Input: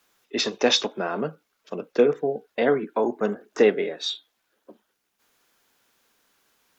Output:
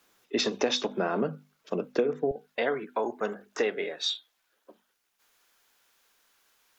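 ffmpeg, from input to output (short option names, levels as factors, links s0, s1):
-af "bandreject=f=50:t=h:w=6,bandreject=f=100:t=h:w=6,bandreject=f=150:t=h:w=6,bandreject=f=200:t=h:w=6,bandreject=f=250:t=h:w=6,asetnsamples=n=441:p=0,asendcmd='2.31 equalizer g -9',equalizer=f=200:w=0.44:g=4,acompressor=threshold=0.0708:ratio=6"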